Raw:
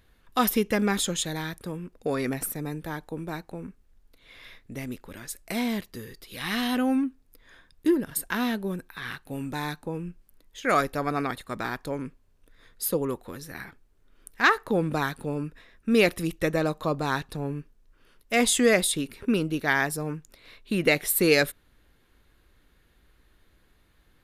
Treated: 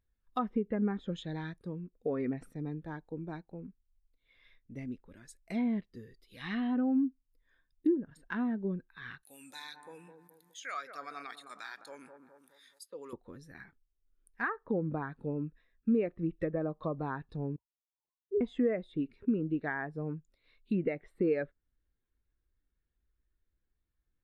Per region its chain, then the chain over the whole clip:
0:09.23–0:13.13: first difference + delay with a low-pass on its return 209 ms, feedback 44%, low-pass 1,200 Hz, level −9 dB + envelope flattener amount 50%
0:17.56–0:18.41: three sine waves on the formant tracks + Butterworth high-pass 1,700 Hz + voice inversion scrambler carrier 2,500 Hz
whole clip: treble cut that deepens with the level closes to 1,800 Hz, closed at −22 dBFS; downward compressor 5 to 1, threshold −25 dBFS; every bin expanded away from the loudest bin 1.5 to 1; level −6.5 dB

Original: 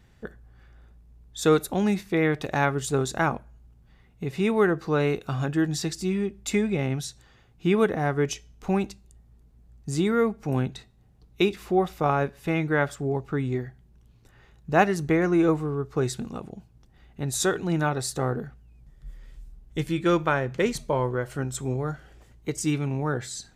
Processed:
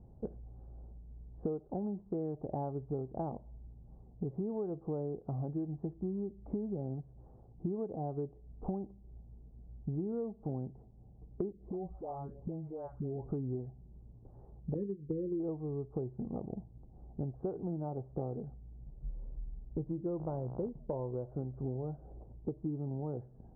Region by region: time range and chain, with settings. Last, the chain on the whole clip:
0:11.52–0:13.27: downward compressor 16 to 1, threshold −33 dBFS + all-pass phaser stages 2, 1.4 Hz, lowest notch 150–2,600 Hz + all-pass dispersion highs, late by 146 ms, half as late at 1,200 Hz
0:14.74–0:15.40: noise gate −26 dBFS, range −11 dB + linear-phase brick-wall band-stop 550–1,700 Hz + double-tracking delay 20 ms −9 dB
0:20.18–0:20.68: parametric band 70 Hz +8 dB 2.9 octaves + hum with harmonics 60 Hz, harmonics 26, −37 dBFS 0 dB per octave
whole clip: Butterworth low-pass 820 Hz 36 dB per octave; downward compressor 10 to 1, threshold −36 dBFS; level +2 dB

